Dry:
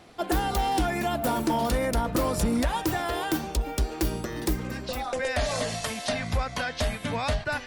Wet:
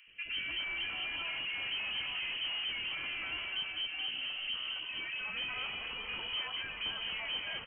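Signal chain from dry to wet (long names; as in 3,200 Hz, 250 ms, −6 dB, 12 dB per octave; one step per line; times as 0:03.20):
delay that swaps between a low-pass and a high-pass 205 ms, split 1,300 Hz, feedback 67%, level −7 dB
gain into a clipping stage and back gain 28.5 dB
voice inversion scrambler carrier 3,100 Hz
three-band delay without the direct sound highs, lows, mids 70/290 ms, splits 490/1,500 Hz
level −6.5 dB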